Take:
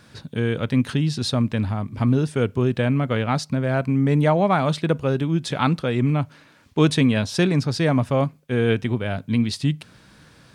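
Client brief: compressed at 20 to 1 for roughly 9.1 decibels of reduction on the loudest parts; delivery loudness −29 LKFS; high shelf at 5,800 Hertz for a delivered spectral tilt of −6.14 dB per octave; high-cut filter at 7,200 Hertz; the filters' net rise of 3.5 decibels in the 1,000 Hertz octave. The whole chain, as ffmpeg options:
ffmpeg -i in.wav -af "lowpass=7200,equalizer=frequency=1000:width_type=o:gain=5,highshelf=frequency=5800:gain=-7.5,acompressor=threshold=-21dB:ratio=20,volume=-2dB" out.wav

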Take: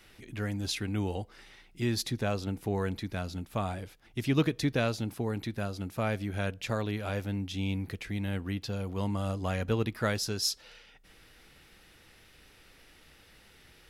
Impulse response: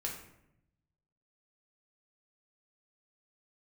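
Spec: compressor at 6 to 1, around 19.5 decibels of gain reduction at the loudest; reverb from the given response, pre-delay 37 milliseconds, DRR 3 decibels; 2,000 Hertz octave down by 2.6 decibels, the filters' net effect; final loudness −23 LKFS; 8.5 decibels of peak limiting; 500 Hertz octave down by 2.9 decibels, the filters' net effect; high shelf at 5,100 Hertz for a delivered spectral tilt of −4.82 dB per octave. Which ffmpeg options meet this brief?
-filter_complex "[0:a]equalizer=frequency=500:width_type=o:gain=-3.5,equalizer=frequency=2000:width_type=o:gain=-4.5,highshelf=frequency=5100:gain=7.5,acompressor=threshold=-44dB:ratio=6,alimiter=level_in=16dB:limit=-24dB:level=0:latency=1,volume=-16dB,asplit=2[link_01][link_02];[1:a]atrim=start_sample=2205,adelay=37[link_03];[link_02][link_03]afir=irnorm=-1:irlink=0,volume=-4.5dB[link_04];[link_01][link_04]amix=inputs=2:normalize=0,volume=26dB"

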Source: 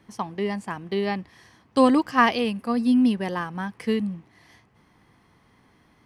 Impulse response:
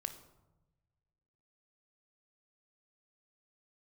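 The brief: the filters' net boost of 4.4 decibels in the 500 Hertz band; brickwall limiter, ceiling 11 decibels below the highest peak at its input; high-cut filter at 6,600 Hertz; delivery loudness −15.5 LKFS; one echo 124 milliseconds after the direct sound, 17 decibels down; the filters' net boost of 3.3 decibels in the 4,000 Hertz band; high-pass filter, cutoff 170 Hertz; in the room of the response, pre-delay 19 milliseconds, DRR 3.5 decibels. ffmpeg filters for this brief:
-filter_complex "[0:a]highpass=170,lowpass=6600,equalizer=frequency=500:width_type=o:gain=5,equalizer=frequency=4000:width_type=o:gain=5,alimiter=limit=-14dB:level=0:latency=1,aecho=1:1:124:0.141,asplit=2[link_01][link_02];[1:a]atrim=start_sample=2205,adelay=19[link_03];[link_02][link_03]afir=irnorm=-1:irlink=0,volume=-2dB[link_04];[link_01][link_04]amix=inputs=2:normalize=0,volume=8.5dB"

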